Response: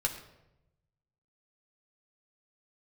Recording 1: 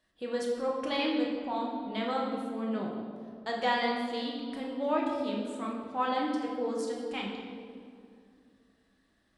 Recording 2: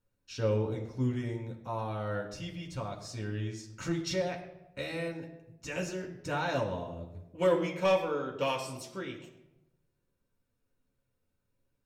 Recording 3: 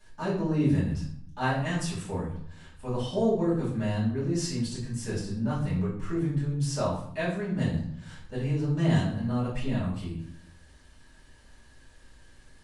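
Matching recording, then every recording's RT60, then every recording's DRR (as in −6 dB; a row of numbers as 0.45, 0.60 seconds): 2; 2.4, 0.90, 0.60 seconds; −2.5, 0.0, −9.5 decibels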